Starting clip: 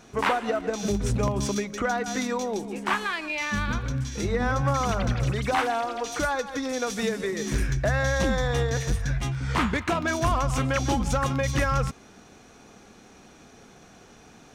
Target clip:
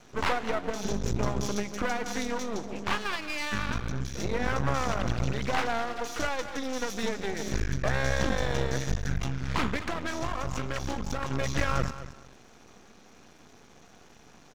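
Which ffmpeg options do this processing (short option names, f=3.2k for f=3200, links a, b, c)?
-filter_complex "[0:a]aresample=16000,aresample=44100,asettb=1/sr,asplit=3[a][b][c];[a]atrim=end=9.754[d];[b]atrim=start=9.75:end=11.31,asetpts=PTS-STARTPTS,afade=t=in:d=0.004:c=qsin,afade=t=out:st=1.556:d=0.004:c=qsin,acompressor=threshold=-25dB:ratio=6[e];[c]atrim=start=11.306[f];[d][e]acrossfade=d=0.004:c1=hsin:c2=qsin[g];[g][f]acrossfade=d=0.004:c1=qsin:c2=hsin,asplit=2[h][i];[i]aecho=0:1:225|450|675:0.211|0.0486|0.0112[j];[h][j]amix=inputs=2:normalize=0,aeval=exprs='max(val(0),0)':c=same"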